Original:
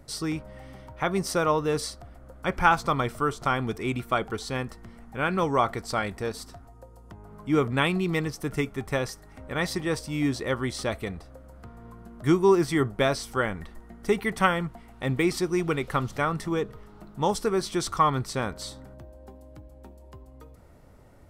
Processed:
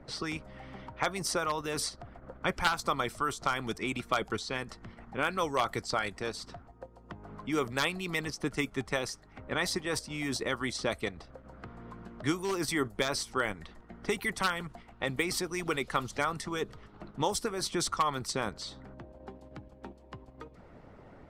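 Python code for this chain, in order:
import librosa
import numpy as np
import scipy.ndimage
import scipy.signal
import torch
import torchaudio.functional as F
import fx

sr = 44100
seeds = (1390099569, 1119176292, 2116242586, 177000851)

p1 = np.minimum(x, 2.0 * 10.0 ** (-13.5 / 20.0) - x)
p2 = fx.env_lowpass(p1, sr, base_hz=2100.0, full_db=-22.5)
p3 = fx.high_shelf(p2, sr, hz=2800.0, db=6.5)
p4 = fx.level_steps(p3, sr, step_db=16)
p5 = p3 + F.gain(torch.from_numpy(p4), -1.0).numpy()
p6 = fx.hpss(p5, sr, part='harmonic', gain_db=-11)
p7 = fx.band_squash(p6, sr, depth_pct=40)
y = F.gain(torch.from_numpy(p7), -5.5).numpy()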